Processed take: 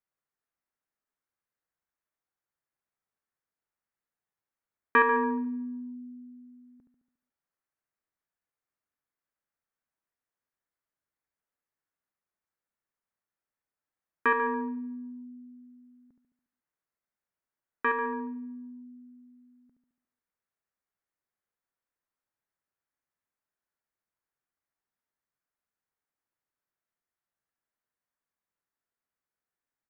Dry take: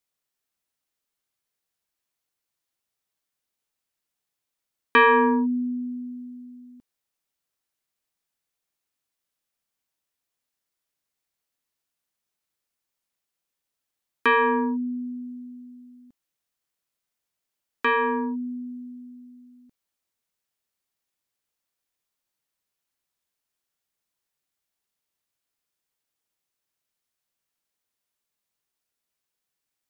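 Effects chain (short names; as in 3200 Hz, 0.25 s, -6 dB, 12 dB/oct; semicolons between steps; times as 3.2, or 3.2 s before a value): resonant high shelf 2400 Hz -11 dB, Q 1.5; feedback echo 71 ms, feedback 54%, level -7 dB; gain -5.5 dB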